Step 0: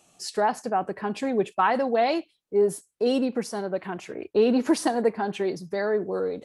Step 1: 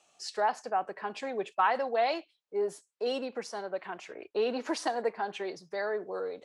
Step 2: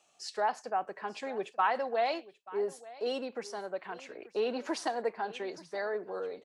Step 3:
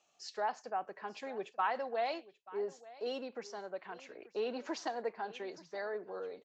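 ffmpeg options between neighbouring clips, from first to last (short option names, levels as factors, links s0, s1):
-filter_complex "[0:a]acrossover=split=450 8000:gain=0.178 1 0.0794[s0][s1][s2];[s0][s1][s2]amix=inputs=3:normalize=0,volume=0.668"
-af "aecho=1:1:884:0.112,volume=0.794"
-af "aresample=16000,aresample=44100,volume=0.562"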